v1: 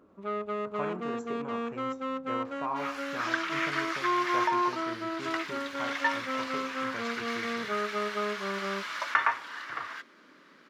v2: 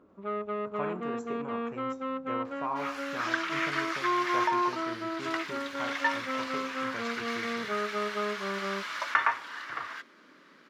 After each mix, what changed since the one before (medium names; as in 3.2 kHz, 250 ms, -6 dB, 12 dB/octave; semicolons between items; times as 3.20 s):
first sound: add boxcar filter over 7 samples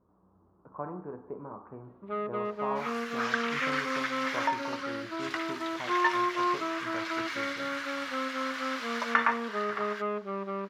speech: add low-pass 1.2 kHz 24 dB/octave; first sound: entry +1.85 s